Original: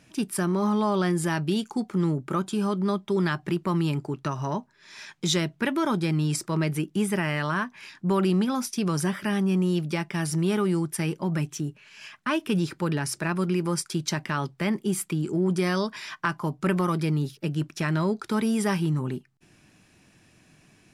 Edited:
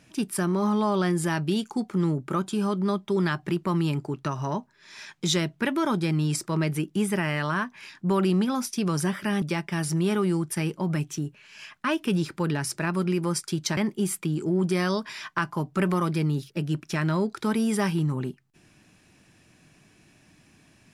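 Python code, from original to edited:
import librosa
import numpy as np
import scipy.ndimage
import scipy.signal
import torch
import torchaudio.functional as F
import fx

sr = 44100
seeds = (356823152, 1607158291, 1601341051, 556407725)

y = fx.edit(x, sr, fx.cut(start_s=9.42, length_s=0.42),
    fx.cut(start_s=14.19, length_s=0.45), tone=tone)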